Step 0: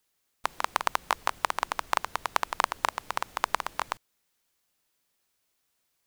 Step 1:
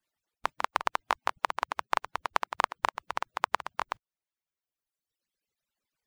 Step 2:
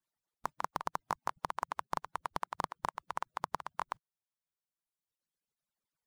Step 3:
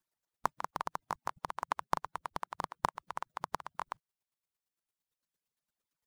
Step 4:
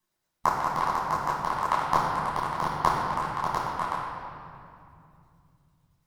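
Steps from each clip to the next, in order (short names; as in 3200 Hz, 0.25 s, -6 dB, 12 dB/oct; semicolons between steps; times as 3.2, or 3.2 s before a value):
median-filter separation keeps percussive; high shelf 5800 Hz -11.5 dB; reverb removal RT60 1.6 s
one-sided fold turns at -13 dBFS; fifteen-band EQ 160 Hz +7 dB, 1000 Hz +4 dB, 2500 Hz -4 dB, 10000 Hz +3 dB; limiter -9 dBFS, peak gain reduction 4 dB; gain -7 dB
chopper 8.8 Hz, depth 60%, duty 20%; gain +6 dB
reverb RT60 2.5 s, pre-delay 11 ms, DRR -8.5 dB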